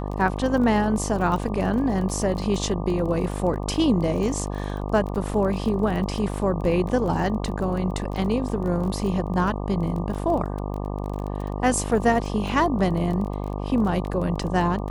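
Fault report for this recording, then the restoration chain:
buzz 50 Hz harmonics 24 -29 dBFS
crackle 26/s -30 dBFS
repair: de-click; de-hum 50 Hz, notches 24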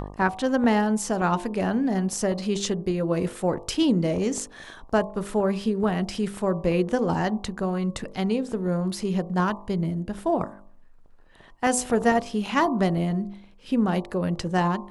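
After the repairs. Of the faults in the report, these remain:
none

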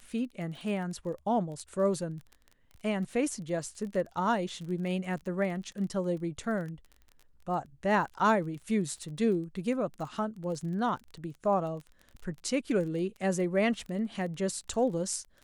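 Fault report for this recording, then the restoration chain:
crackle 24/s -39 dBFS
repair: de-click

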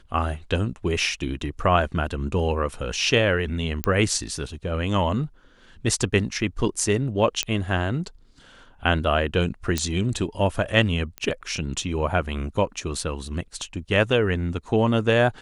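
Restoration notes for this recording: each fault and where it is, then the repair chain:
3.84 pop -7 dBFS
7.43 pop -8 dBFS
9.78 pop -7 dBFS
11.18 pop -16 dBFS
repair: de-click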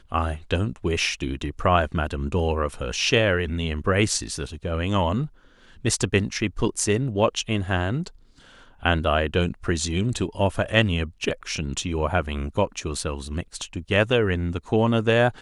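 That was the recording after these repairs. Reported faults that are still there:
11.18 pop

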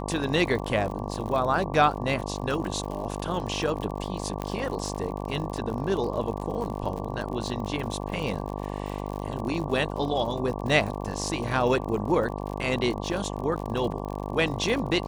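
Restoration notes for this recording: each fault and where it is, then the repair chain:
buzz 50 Hz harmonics 23 -33 dBFS
crackle 58/s -33 dBFS
4.42 pop -17 dBFS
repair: de-click; de-hum 50 Hz, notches 23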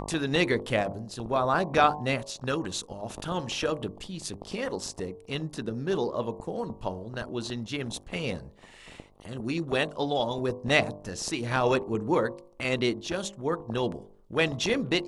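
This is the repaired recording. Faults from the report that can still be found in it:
none

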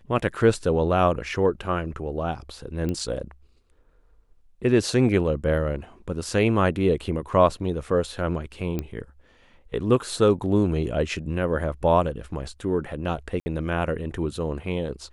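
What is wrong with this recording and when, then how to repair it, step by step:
2.89 pop -17 dBFS
8.79 pop -15 dBFS
13.4–13.46 gap 60 ms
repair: de-click; interpolate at 13.4, 60 ms

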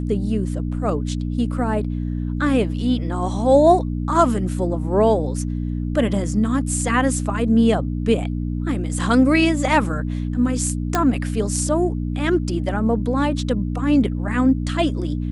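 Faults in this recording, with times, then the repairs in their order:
hum 60 Hz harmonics 5 -24 dBFS
10.95 pop -5 dBFS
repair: de-click; de-hum 60 Hz, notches 5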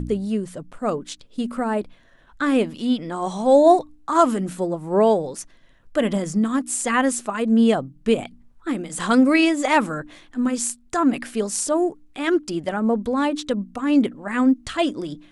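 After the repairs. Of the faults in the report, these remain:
none

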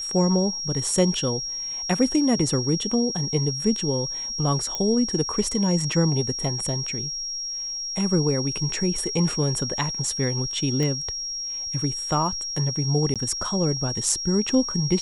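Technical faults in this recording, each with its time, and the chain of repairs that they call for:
tone 5600 Hz -28 dBFS
4.75 pop -13 dBFS
10.83 pop -15 dBFS
13.14–13.16 gap 17 ms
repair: de-click; notch 5600 Hz, Q 30; interpolate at 13.14, 17 ms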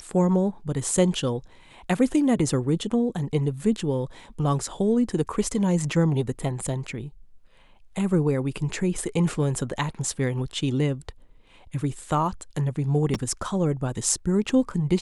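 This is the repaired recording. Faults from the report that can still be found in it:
4.75 pop

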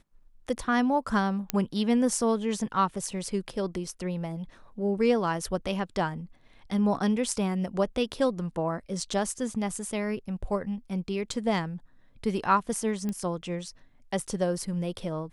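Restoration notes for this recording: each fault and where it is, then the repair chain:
1.5 pop -9 dBFS
13.09 pop -20 dBFS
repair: de-click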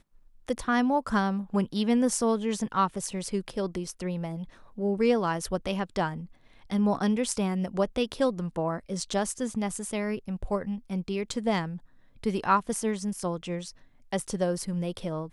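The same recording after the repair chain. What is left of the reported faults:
1.5 pop

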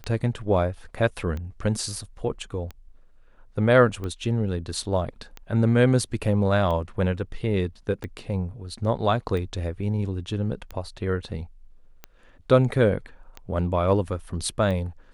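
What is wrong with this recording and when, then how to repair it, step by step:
tick 45 rpm -21 dBFS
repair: de-click

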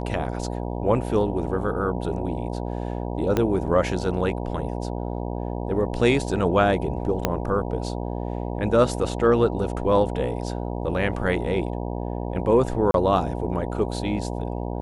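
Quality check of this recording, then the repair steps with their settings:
buzz 60 Hz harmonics 16 -29 dBFS
3.37 pop -9 dBFS
7.25 pop -6 dBFS
12.91–12.94 gap 32 ms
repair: de-click; de-hum 60 Hz, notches 16; interpolate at 12.91, 32 ms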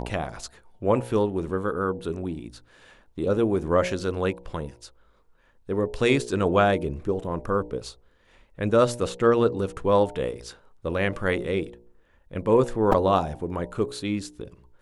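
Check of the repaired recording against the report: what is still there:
3.37 pop
7.25 pop

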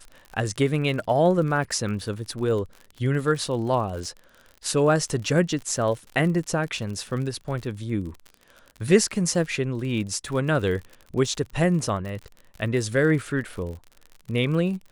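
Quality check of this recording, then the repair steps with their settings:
crackle 54/s -33 dBFS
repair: de-click

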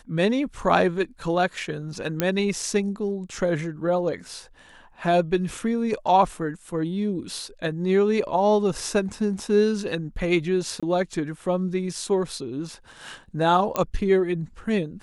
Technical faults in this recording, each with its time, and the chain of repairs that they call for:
2.2 pop -7 dBFS
10.8–10.83 gap 26 ms
13.76 pop -9 dBFS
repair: de-click; interpolate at 10.8, 26 ms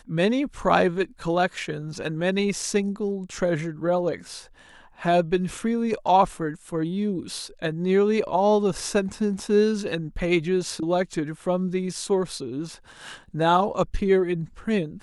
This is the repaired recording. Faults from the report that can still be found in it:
13.76 pop

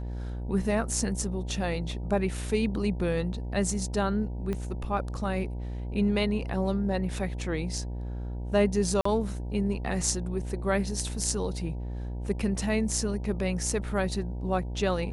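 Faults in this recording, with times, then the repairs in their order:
buzz 60 Hz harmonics 16 -34 dBFS
4.53 pop -20 dBFS
9.01–9.05 gap 44 ms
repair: de-click; de-hum 60 Hz, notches 16; interpolate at 9.01, 44 ms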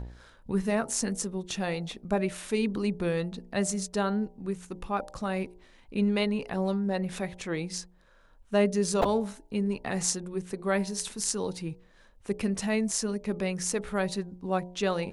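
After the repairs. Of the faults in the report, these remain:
4.53 pop

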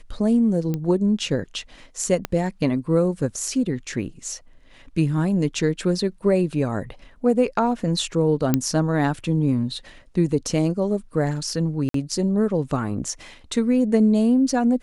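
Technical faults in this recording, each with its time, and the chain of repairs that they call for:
0.74 pop -14 dBFS
2.25 pop -10 dBFS
8.54 pop -5 dBFS
11.89–11.94 gap 53 ms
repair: de-click; interpolate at 11.89, 53 ms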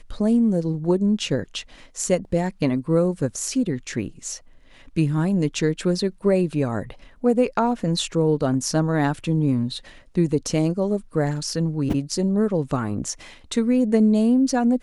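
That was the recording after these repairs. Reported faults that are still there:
2.25 pop

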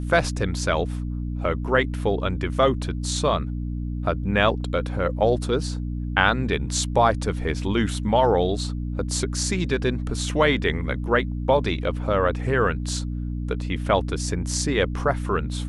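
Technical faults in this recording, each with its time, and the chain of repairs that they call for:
hum 60 Hz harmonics 5 -28 dBFS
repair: de-hum 60 Hz, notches 5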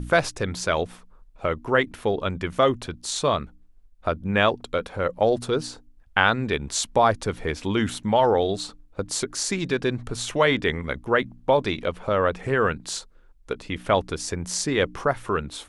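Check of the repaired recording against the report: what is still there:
none

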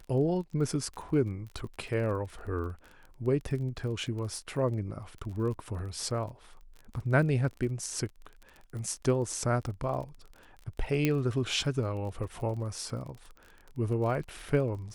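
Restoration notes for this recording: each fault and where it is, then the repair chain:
crackle 28/s -39 dBFS
11.05 pop -13 dBFS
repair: de-click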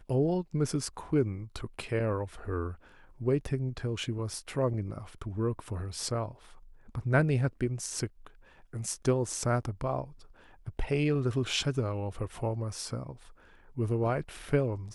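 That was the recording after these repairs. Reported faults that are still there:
none

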